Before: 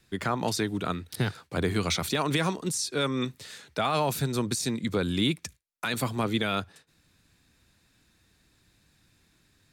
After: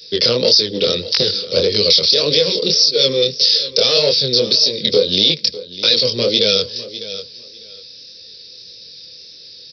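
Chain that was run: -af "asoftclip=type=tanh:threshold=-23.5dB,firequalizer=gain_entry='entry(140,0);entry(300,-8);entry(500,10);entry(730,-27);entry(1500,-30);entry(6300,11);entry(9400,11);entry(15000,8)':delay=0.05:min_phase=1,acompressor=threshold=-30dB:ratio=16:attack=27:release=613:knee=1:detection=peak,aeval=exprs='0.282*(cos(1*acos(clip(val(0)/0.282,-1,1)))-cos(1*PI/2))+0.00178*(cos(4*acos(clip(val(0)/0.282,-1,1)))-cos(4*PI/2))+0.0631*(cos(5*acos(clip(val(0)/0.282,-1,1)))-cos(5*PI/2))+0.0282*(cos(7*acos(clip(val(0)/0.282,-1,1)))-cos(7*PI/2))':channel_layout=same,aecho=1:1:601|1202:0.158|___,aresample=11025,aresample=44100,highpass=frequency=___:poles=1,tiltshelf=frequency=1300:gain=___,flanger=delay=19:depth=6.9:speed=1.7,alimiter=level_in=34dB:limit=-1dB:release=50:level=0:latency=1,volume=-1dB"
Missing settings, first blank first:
0.0285, 900, -9.5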